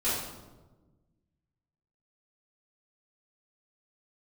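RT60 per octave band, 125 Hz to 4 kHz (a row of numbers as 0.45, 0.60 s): 1.9, 1.8, 1.4, 1.1, 0.80, 0.70 s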